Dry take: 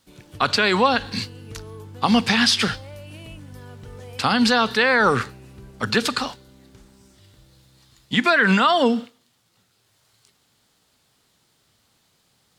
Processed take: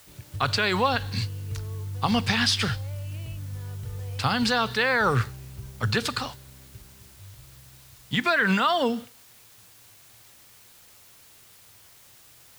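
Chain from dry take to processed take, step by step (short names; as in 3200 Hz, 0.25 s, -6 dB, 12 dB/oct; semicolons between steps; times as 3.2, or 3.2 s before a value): HPF 69 Hz 12 dB/oct; resonant low shelf 150 Hz +11.5 dB, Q 1.5; requantised 8-bit, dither triangular; gain -5 dB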